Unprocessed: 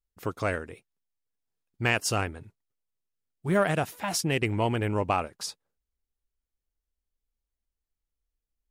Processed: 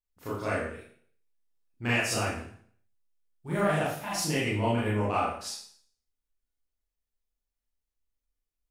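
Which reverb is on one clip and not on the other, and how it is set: Schroeder reverb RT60 0.55 s, combs from 26 ms, DRR -8.5 dB; trim -10 dB

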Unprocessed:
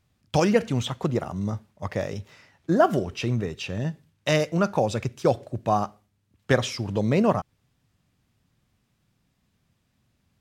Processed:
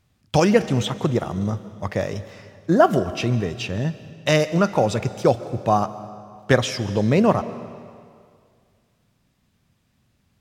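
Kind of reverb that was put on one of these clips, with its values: algorithmic reverb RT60 2.1 s, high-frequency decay 0.95×, pre-delay 100 ms, DRR 14.5 dB; trim +4 dB

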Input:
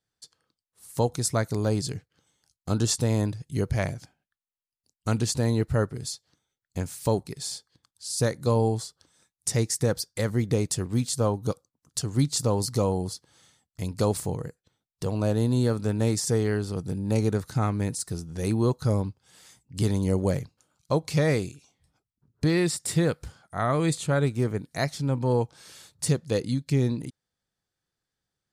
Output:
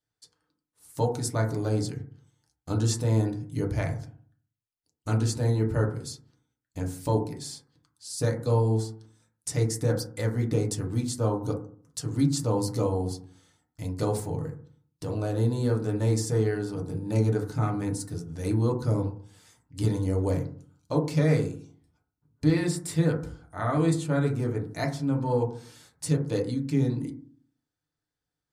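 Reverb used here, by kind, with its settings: FDN reverb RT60 0.49 s, low-frequency decay 1.3×, high-frequency decay 0.25×, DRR 0 dB; trim -6 dB

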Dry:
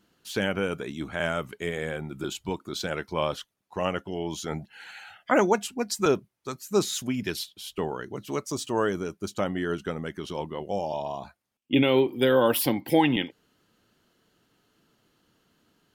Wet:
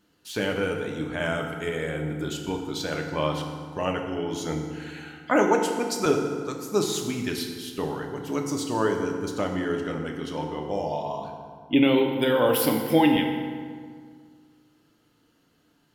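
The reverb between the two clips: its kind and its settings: FDN reverb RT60 1.9 s, low-frequency decay 1.25×, high-frequency decay 0.65×, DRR 2 dB; trim -1 dB

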